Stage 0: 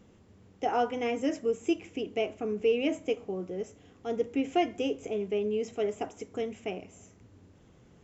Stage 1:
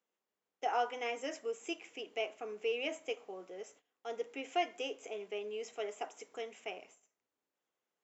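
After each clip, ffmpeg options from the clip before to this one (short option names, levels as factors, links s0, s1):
-af "agate=range=0.1:threshold=0.00316:ratio=16:detection=peak,highpass=680,volume=0.794"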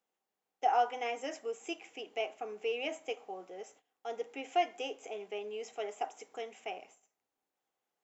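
-af "equalizer=f=780:w=6.1:g=9.5"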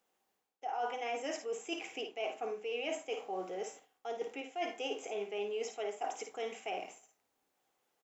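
-af "areverse,acompressor=threshold=0.00794:ratio=12,areverse,aecho=1:1:54|77:0.422|0.141,volume=2.24"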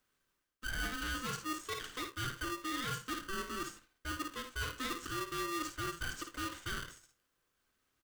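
-af "volume=44.7,asoftclip=hard,volume=0.0224,aeval=exprs='val(0)*sgn(sin(2*PI*770*n/s))':c=same"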